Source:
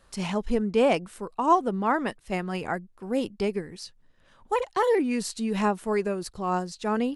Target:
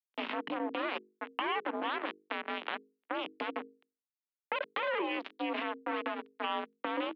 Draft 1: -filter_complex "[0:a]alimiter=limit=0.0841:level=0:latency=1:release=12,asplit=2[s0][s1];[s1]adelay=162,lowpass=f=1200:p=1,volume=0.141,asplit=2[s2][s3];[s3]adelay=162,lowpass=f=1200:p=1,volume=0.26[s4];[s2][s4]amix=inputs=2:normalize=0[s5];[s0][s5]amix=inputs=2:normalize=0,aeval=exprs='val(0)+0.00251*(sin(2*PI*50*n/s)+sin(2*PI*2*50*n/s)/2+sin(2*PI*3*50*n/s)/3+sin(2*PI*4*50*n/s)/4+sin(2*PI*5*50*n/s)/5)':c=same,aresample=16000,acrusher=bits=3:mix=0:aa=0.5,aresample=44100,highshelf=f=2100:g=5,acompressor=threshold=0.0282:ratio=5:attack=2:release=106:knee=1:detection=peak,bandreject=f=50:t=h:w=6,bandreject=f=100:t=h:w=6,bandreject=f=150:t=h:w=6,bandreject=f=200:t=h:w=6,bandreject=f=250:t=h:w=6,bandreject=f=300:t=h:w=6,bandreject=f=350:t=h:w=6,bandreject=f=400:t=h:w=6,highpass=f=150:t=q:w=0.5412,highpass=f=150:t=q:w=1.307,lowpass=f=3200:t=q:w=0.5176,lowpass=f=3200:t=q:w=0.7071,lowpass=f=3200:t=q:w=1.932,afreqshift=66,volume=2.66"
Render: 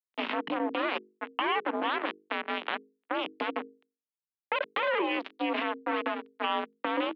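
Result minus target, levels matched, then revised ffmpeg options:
compression: peak gain reduction -5 dB
-filter_complex "[0:a]alimiter=limit=0.0841:level=0:latency=1:release=12,asplit=2[s0][s1];[s1]adelay=162,lowpass=f=1200:p=1,volume=0.141,asplit=2[s2][s3];[s3]adelay=162,lowpass=f=1200:p=1,volume=0.26[s4];[s2][s4]amix=inputs=2:normalize=0[s5];[s0][s5]amix=inputs=2:normalize=0,aeval=exprs='val(0)+0.00251*(sin(2*PI*50*n/s)+sin(2*PI*2*50*n/s)/2+sin(2*PI*3*50*n/s)/3+sin(2*PI*4*50*n/s)/4+sin(2*PI*5*50*n/s)/5)':c=same,aresample=16000,acrusher=bits=3:mix=0:aa=0.5,aresample=44100,highshelf=f=2100:g=5,acompressor=threshold=0.0141:ratio=5:attack=2:release=106:knee=1:detection=peak,bandreject=f=50:t=h:w=6,bandreject=f=100:t=h:w=6,bandreject=f=150:t=h:w=6,bandreject=f=200:t=h:w=6,bandreject=f=250:t=h:w=6,bandreject=f=300:t=h:w=6,bandreject=f=350:t=h:w=6,bandreject=f=400:t=h:w=6,highpass=f=150:t=q:w=0.5412,highpass=f=150:t=q:w=1.307,lowpass=f=3200:t=q:w=0.5176,lowpass=f=3200:t=q:w=0.7071,lowpass=f=3200:t=q:w=1.932,afreqshift=66,volume=2.66"

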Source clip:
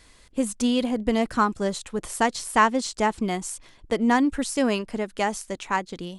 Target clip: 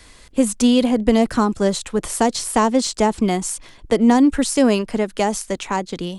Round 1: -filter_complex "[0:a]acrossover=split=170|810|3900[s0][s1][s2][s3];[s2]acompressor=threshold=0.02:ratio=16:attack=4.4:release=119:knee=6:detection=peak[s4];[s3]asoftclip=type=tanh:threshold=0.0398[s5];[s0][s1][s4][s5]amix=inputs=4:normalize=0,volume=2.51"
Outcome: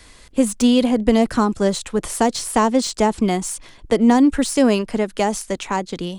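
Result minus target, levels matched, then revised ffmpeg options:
saturation: distortion +15 dB
-filter_complex "[0:a]acrossover=split=170|810|3900[s0][s1][s2][s3];[s2]acompressor=threshold=0.02:ratio=16:attack=4.4:release=119:knee=6:detection=peak[s4];[s3]asoftclip=type=tanh:threshold=0.133[s5];[s0][s1][s4][s5]amix=inputs=4:normalize=0,volume=2.51"

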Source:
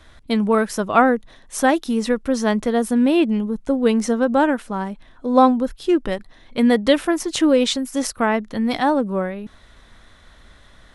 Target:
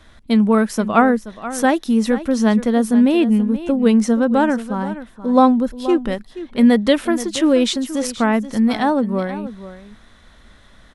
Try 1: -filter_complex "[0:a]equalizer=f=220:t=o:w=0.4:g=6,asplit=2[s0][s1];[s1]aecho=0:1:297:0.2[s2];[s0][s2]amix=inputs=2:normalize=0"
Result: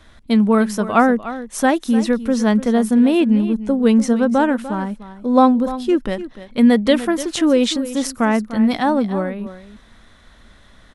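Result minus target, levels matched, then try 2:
echo 181 ms early
-filter_complex "[0:a]equalizer=f=220:t=o:w=0.4:g=6,asplit=2[s0][s1];[s1]aecho=0:1:478:0.2[s2];[s0][s2]amix=inputs=2:normalize=0"

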